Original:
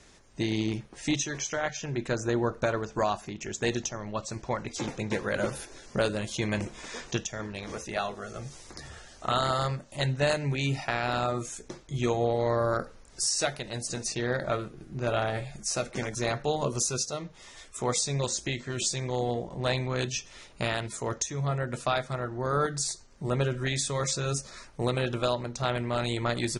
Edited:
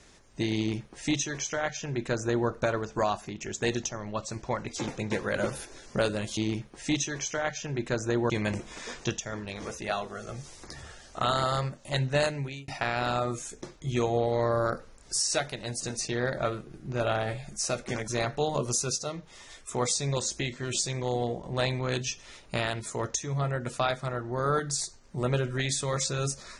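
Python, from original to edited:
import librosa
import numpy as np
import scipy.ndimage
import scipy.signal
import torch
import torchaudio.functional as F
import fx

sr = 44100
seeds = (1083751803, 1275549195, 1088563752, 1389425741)

y = fx.edit(x, sr, fx.duplicate(start_s=0.56, length_s=1.93, to_s=6.37),
    fx.fade_out_span(start_s=10.32, length_s=0.43), tone=tone)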